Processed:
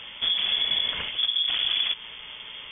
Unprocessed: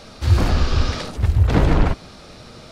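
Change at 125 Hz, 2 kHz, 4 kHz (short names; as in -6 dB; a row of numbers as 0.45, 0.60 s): under -35 dB, -2.0 dB, +12.5 dB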